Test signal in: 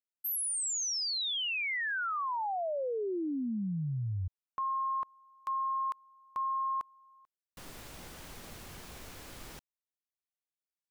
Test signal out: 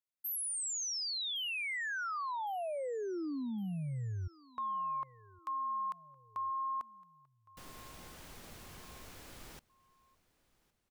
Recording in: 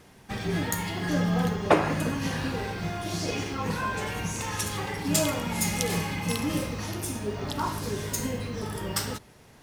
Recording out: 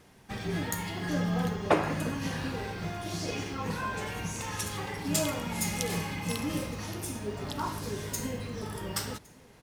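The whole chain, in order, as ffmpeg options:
-af "aecho=1:1:1112|2224|3336:0.0631|0.0328|0.0171,volume=-4dB"

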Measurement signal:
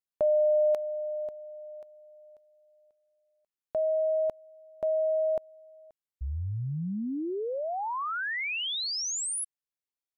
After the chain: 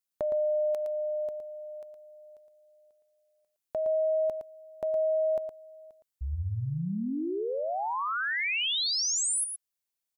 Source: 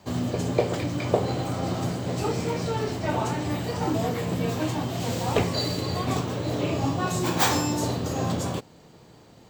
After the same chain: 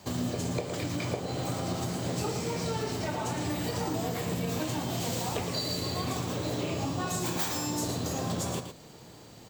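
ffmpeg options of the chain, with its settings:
-af "highshelf=f=4.3k:g=8.5,acompressor=threshold=-27dB:ratio=6:attack=3.9:release=291:knee=1:detection=rms,aecho=1:1:114:0.422"

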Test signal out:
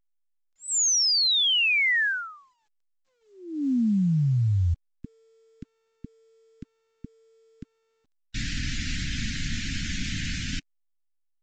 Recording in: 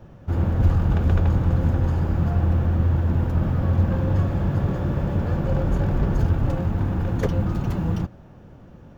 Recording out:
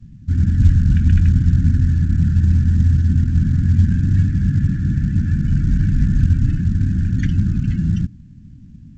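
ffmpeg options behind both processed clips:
-af "afftdn=nr=16:nf=-43,asuperstop=centerf=670:order=12:qfactor=0.5,volume=6dB" -ar 16000 -c:a pcm_alaw

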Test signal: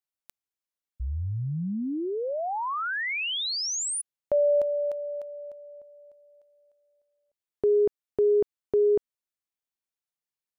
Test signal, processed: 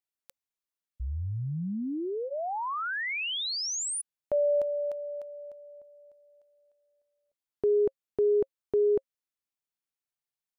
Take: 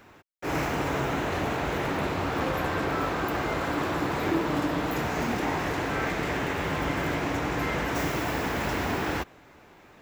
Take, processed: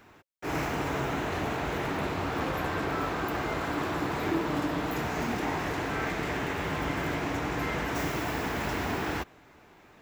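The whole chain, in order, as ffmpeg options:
-af "bandreject=f=540:w=15,volume=-2.5dB"

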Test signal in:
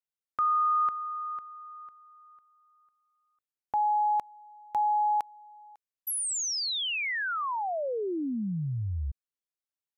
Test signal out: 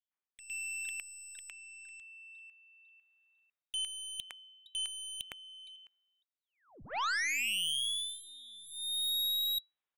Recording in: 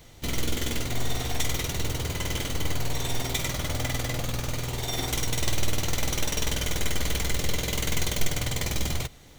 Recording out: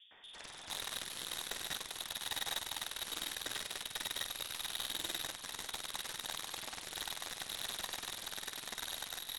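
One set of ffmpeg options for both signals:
-filter_complex "[0:a]asplit=2[a][b];[b]alimiter=limit=-23dB:level=0:latency=1:release=91,volume=-0.5dB[c];[a][c]amix=inputs=2:normalize=0,highpass=f=62:p=1,areverse,acompressor=threshold=-39dB:ratio=4:attack=2.9:release=643:knee=6:detection=peak,areverse,acrossover=split=300|1100[d][e][f];[f]adelay=110[g];[d]adelay=460[h];[h][e][g]amix=inputs=3:normalize=0,lowpass=f=3.3k:t=q:w=0.5098,lowpass=f=3.3k:t=q:w=0.6013,lowpass=f=3.3k:t=q:w=0.9,lowpass=f=3.3k:t=q:w=2.563,afreqshift=-3900,aeval=exprs='0.0335*(cos(1*acos(clip(val(0)/0.0335,-1,1)))-cos(1*PI/2))+0.00422*(cos(2*acos(clip(val(0)/0.0335,-1,1)))-cos(2*PI/2))+0.0015*(cos(5*acos(clip(val(0)/0.0335,-1,1)))-cos(5*PI/2))+0.00944*(cos(7*acos(clip(val(0)/0.0335,-1,1)))-cos(7*PI/2))':c=same,volume=4.5dB"

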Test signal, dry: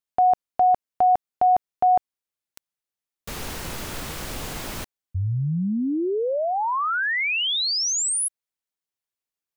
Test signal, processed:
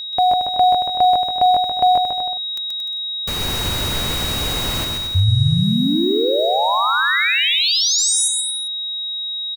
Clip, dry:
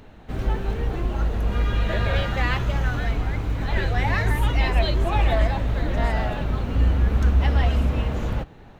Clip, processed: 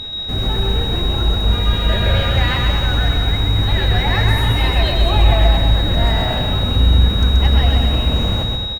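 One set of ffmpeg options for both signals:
-filter_complex "[0:a]asplit=2[a][b];[b]acompressor=threshold=-26dB:ratio=16:attack=1.5:release=36:knee=1:detection=rms,volume=0dB[c];[a][c]amix=inputs=2:normalize=0,equalizer=f=88:w=1.9:g=6.5,acrusher=bits=6:mix=0:aa=0.5,aeval=exprs='val(0)+0.0501*sin(2*PI*3800*n/s)':c=same,aecho=1:1:130|227.5|300.6|355.5|396.6:0.631|0.398|0.251|0.158|0.1"

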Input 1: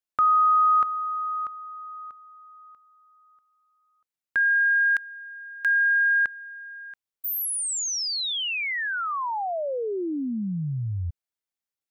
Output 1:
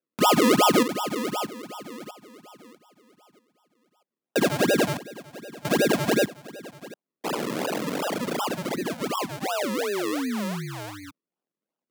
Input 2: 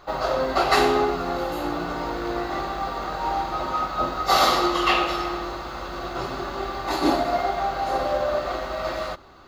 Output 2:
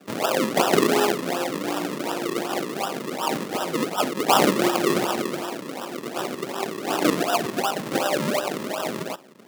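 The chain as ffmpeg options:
-af "tremolo=f=200:d=0.519,acrusher=samples=40:mix=1:aa=0.000001:lfo=1:lforange=40:lforate=2.7,highpass=f=180:w=0.5412,highpass=f=180:w=1.3066,volume=3.5dB"

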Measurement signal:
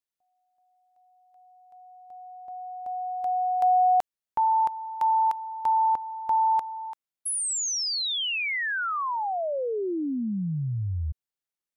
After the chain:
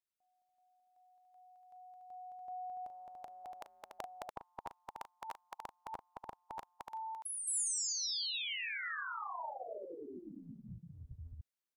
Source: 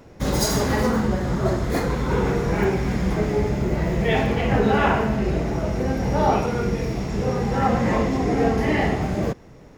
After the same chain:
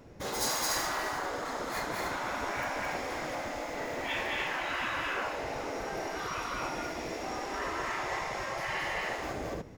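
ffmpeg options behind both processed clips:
-af "aecho=1:1:37.9|215.7|288.6:0.282|0.794|0.562,afftfilt=real='re*lt(hypot(re,im),0.282)':imag='im*lt(hypot(re,im),0.282)':win_size=1024:overlap=0.75,volume=-6.5dB"

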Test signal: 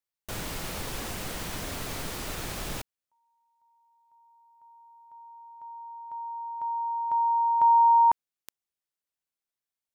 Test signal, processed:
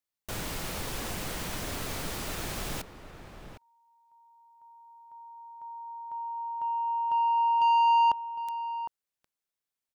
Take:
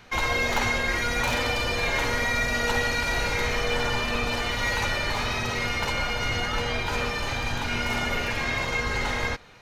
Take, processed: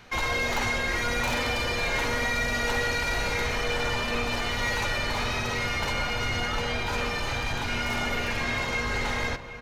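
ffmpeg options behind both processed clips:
-filter_complex "[0:a]asoftclip=type=tanh:threshold=-20.5dB,asplit=2[a][b];[b]adelay=758,volume=-10dB,highshelf=f=4k:g=-17.1[c];[a][c]amix=inputs=2:normalize=0"

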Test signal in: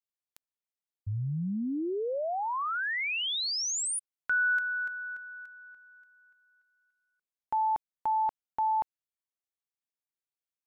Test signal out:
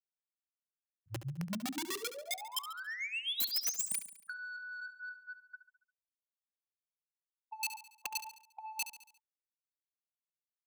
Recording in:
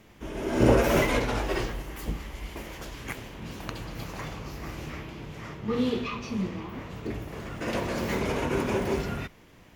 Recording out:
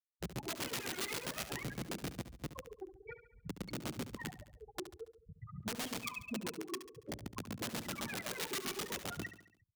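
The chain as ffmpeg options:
-filter_complex "[0:a]aphaser=in_gain=1:out_gain=1:delay=2.8:decay=0.8:speed=0.52:type=triangular,aeval=exprs='val(0)+0.00158*(sin(2*PI*60*n/s)+sin(2*PI*2*60*n/s)/2+sin(2*PI*3*60*n/s)/3+sin(2*PI*4*60*n/s)/4+sin(2*PI*5*60*n/s)/5)':c=same,adynamicequalizer=threshold=0.0112:dfrequency=320:dqfactor=2.1:tfrequency=320:tqfactor=2.1:attack=5:release=100:ratio=0.375:range=2:mode=boostabove:tftype=bell,afftfilt=real='re*gte(hypot(re,im),0.112)':imag='im*gte(hypot(re,im),0.112)':win_size=1024:overlap=0.75,acompressor=threshold=-31dB:ratio=5:attack=2.2:release=35:knee=1:detection=rms,acrossover=split=1400[a][b];[a]aeval=exprs='val(0)*(1-1/2+1/2*cos(2*PI*7.7*n/s))':c=same[c];[b]aeval=exprs='val(0)*(1-1/2-1/2*cos(2*PI*7.7*n/s))':c=same[d];[c][d]amix=inputs=2:normalize=0,aeval=exprs='(mod(35.5*val(0)+1,2)-1)/35.5':c=same,highpass=180,asoftclip=type=tanh:threshold=-30.5dB,equalizer=f=700:w=0.42:g=-7,acrossover=split=330|2400[e][f][g];[f]acompressor=threshold=-50dB:ratio=6:attack=18:release=331:knee=2.83:detection=peak[h];[e][h][g]amix=inputs=3:normalize=0,aecho=1:1:70|140|210|280|350:0.251|0.131|0.0679|0.0353|0.0184,volume=5.5dB"

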